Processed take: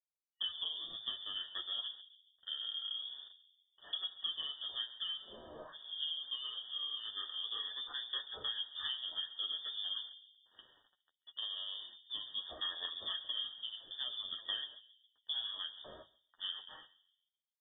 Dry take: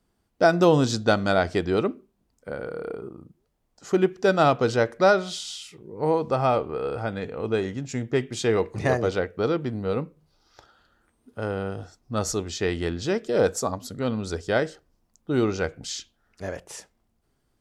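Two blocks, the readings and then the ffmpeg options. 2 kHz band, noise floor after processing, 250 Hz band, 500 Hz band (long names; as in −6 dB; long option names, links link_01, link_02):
−22.0 dB, below −85 dBFS, below −40 dB, −37.5 dB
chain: -filter_complex "[0:a]asplit=2[link_01][link_02];[link_02]asoftclip=type=tanh:threshold=-16dB,volume=-7.5dB[link_03];[link_01][link_03]amix=inputs=2:normalize=0,aeval=exprs='0.596*(cos(1*acos(clip(val(0)/0.596,-1,1)))-cos(1*PI/2))+0.0473*(cos(2*acos(clip(val(0)/0.596,-1,1)))-cos(2*PI/2))+0.0668*(cos(3*acos(clip(val(0)/0.596,-1,1)))-cos(3*PI/2))+0.00944*(cos(5*acos(clip(val(0)/0.596,-1,1)))-cos(5*PI/2))':channel_layout=same,flanger=delay=5.5:depth=1.9:regen=-33:speed=0.13:shape=triangular,lowshelf=frequency=310:gain=-10,acompressor=threshold=-39dB:ratio=8,acrusher=bits=9:mix=0:aa=0.000001,afftfilt=real='re*(1-between(b*sr/4096,790,1800))':imag='im*(1-between(b*sr/4096,790,1800))':win_size=4096:overlap=0.75,asplit=2[link_04][link_05];[link_05]adelay=138,lowpass=frequency=920:poles=1,volume=-13dB,asplit=2[link_06][link_07];[link_07]adelay=138,lowpass=frequency=920:poles=1,volume=0.47,asplit=2[link_08][link_09];[link_09]adelay=138,lowpass=frequency=920:poles=1,volume=0.47,asplit=2[link_10][link_11];[link_11]adelay=138,lowpass=frequency=920:poles=1,volume=0.47,asplit=2[link_12][link_13];[link_13]adelay=138,lowpass=frequency=920:poles=1,volume=0.47[link_14];[link_04][link_06][link_08][link_10][link_12][link_14]amix=inputs=6:normalize=0,lowpass=frequency=3100:width_type=q:width=0.5098,lowpass=frequency=3100:width_type=q:width=0.6013,lowpass=frequency=3100:width_type=q:width=0.9,lowpass=frequency=3100:width_type=q:width=2.563,afreqshift=-3700,bandreject=frequency=50:width_type=h:width=6,bandreject=frequency=100:width_type=h:width=6,bandreject=frequency=150:width_type=h:width=6,flanger=delay=9.2:depth=4.7:regen=-24:speed=0.29:shape=sinusoidal,volume=6dB" -ar 44100 -c:a libmp3lame -b:a 40k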